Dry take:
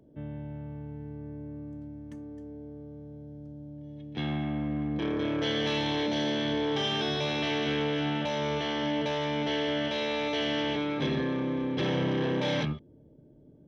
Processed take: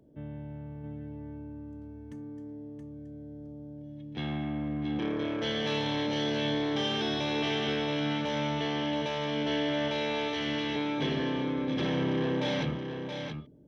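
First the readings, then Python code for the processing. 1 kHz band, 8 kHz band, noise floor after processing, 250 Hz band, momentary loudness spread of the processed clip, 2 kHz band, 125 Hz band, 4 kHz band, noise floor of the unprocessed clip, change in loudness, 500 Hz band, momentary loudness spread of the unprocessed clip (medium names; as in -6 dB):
-1.0 dB, no reading, -44 dBFS, -0.5 dB, 15 LU, -1.0 dB, -1.5 dB, -1.0 dB, -56 dBFS, -1.5 dB, -1.5 dB, 15 LU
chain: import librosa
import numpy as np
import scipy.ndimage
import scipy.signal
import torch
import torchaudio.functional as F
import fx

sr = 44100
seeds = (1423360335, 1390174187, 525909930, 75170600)

y = x + 10.0 ** (-6.5 / 20.0) * np.pad(x, (int(674 * sr / 1000.0), 0))[:len(x)]
y = y * librosa.db_to_amplitude(-2.0)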